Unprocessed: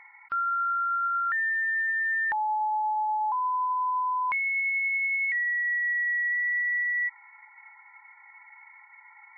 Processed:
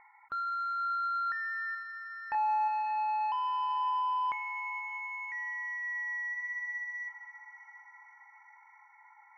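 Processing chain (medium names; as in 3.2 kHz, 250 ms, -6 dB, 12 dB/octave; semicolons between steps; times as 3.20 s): low-pass 1.1 kHz 12 dB/octave; saturation -28.5 dBFS, distortion -17 dB; 1.72–2.68 s: doubling 27 ms -5.5 dB; on a send: echo that smears into a reverb 567 ms, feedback 56%, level -13 dB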